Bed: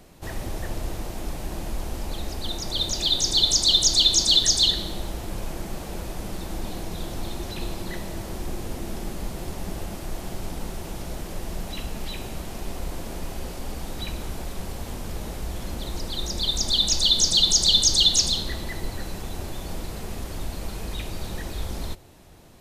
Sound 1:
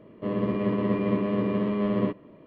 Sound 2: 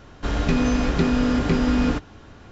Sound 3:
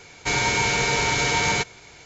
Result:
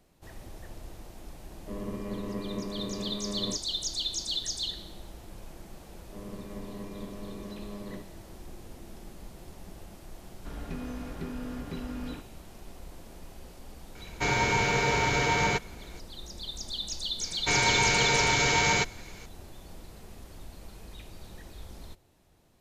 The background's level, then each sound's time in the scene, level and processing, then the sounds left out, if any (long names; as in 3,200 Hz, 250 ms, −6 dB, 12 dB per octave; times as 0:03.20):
bed −14 dB
0:01.45: mix in 1 −10.5 dB
0:05.90: mix in 1 −16.5 dB
0:10.22: mix in 2 −17.5 dB + high-shelf EQ 4,000 Hz −8.5 dB
0:13.95: mix in 3 −1.5 dB + high-shelf EQ 2,800 Hz −9.5 dB
0:17.21: mix in 3 −2.5 dB